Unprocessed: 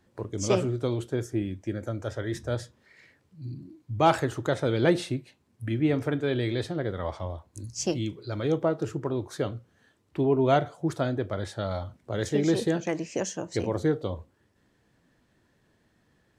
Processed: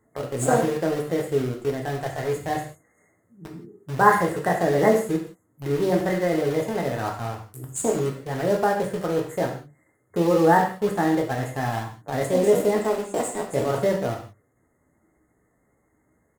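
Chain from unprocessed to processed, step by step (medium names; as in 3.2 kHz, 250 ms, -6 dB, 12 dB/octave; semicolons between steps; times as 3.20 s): FFT band-reject 1.7–5 kHz; in parallel at -6 dB: bit crusher 5-bit; on the sum: pitch shift +4 st; gated-style reverb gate 200 ms falling, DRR 0.5 dB; trim -1 dB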